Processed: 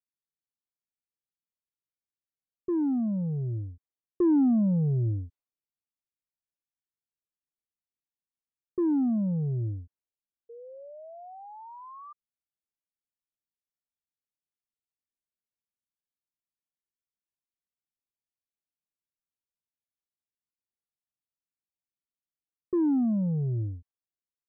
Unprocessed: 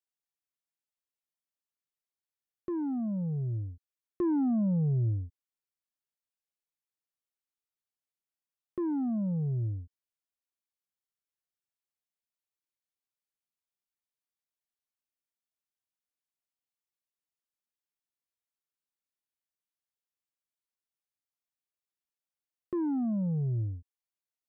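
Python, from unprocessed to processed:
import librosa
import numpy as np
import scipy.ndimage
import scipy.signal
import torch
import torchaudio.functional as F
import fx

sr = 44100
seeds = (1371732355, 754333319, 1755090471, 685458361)

y = fx.dynamic_eq(x, sr, hz=300.0, q=0.99, threshold_db=-43.0, ratio=4.0, max_db=6)
y = fx.env_lowpass(y, sr, base_hz=310.0, full_db=-29.0)
y = fx.spec_paint(y, sr, seeds[0], shape='rise', start_s=10.49, length_s=1.64, low_hz=460.0, high_hz=1200.0, level_db=-45.0)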